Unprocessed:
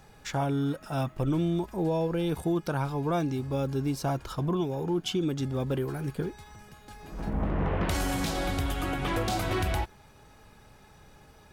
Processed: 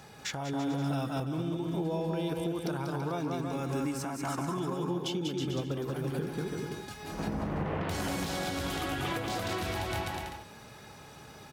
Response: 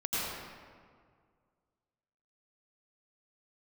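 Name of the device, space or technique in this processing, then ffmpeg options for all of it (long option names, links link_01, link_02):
broadcast voice chain: -filter_complex "[0:a]asettb=1/sr,asplit=3[link_01][link_02][link_03];[link_01]atrim=end=3.424[link_04];[link_02]atrim=start=3.42:end=4.57,asetpts=PTS-STARTPTS,afade=type=in:duration=0.004:curve=qsin,afade=type=out:start_time=1.146:duration=0.004:curve=qsin,equalizer=frequency=125:width_type=o:width=1:gain=-5,equalizer=frequency=250:width_type=o:width=1:gain=5,equalizer=frequency=500:width_type=o:width=1:gain=-6,equalizer=frequency=1000:width_type=o:width=1:gain=5,equalizer=frequency=2000:width_type=o:width=1:gain=8,equalizer=frequency=4000:width_type=o:width=1:gain=-9,equalizer=frequency=8000:width_type=o:width=1:gain=10[link_05];[link_03]atrim=start=4.566[link_06];[link_04][link_05]acrossfade=duration=0.004:curve1=hsin:curve2=qsin[link_07];[link_07][link_06]acrossfade=duration=0.004:curve1=qsin:curve2=hsin,highpass=100,aecho=1:1:190|332.5|439.4|519.5|579.6:0.631|0.398|0.251|0.158|0.1,deesser=0.7,acompressor=threshold=-32dB:ratio=5,equalizer=frequency=4300:width_type=o:width=1.5:gain=3,alimiter=level_in=3dB:limit=-24dB:level=0:latency=1:release=353,volume=-3dB,volume=4dB"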